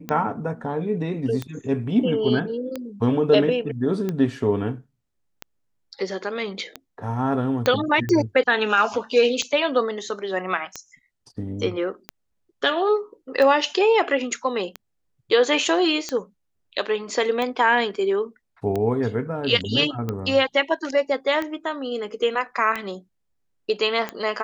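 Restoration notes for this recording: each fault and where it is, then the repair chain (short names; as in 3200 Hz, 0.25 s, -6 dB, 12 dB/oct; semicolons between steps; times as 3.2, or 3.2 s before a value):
tick 45 rpm -14 dBFS
7.66 pop -7 dBFS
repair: de-click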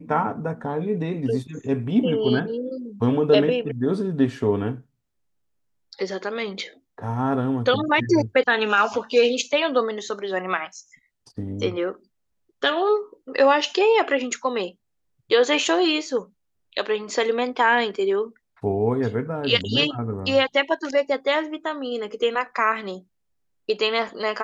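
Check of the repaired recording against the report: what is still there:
7.66 pop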